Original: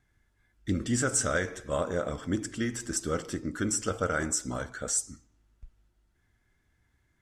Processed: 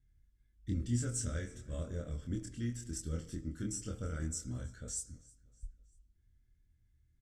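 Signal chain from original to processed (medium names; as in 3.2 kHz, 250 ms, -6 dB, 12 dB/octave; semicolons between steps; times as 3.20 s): amplifier tone stack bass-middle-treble 10-0-1; doubling 25 ms -3 dB; feedback delay 319 ms, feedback 47%, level -23.5 dB; on a send at -22 dB: reverberation RT60 1.0 s, pre-delay 3 ms; on the sum: trim +7.5 dB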